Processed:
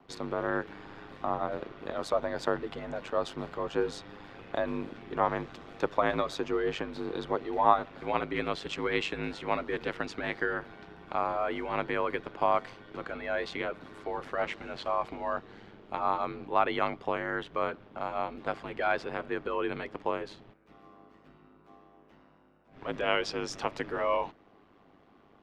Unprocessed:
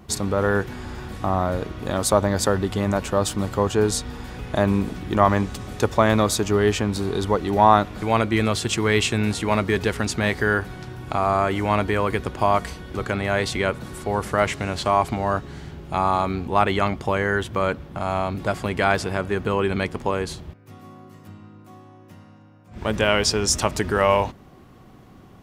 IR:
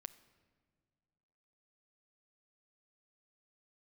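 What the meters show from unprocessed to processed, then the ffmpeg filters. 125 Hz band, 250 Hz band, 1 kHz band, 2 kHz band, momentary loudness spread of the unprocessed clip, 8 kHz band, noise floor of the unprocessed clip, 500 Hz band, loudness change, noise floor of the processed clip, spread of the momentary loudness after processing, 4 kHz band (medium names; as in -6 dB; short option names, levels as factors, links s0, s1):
-19.5 dB, -13.0 dB, -8.5 dB, -9.5 dB, 9 LU, under -20 dB, -48 dBFS, -9.5 dB, -10.0 dB, -61 dBFS, 10 LU, -12.5 dB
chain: -filter_complex "[0:a]aeval=exprs='val(0)*sin(2*PI*50*n/s)':c=same,acrossover=split=260 4300:gain=0.224 1 0.0708[s0][s1][s2];[s0][s1][s2]amix=inputs=3:normalize=0,volume=0.531"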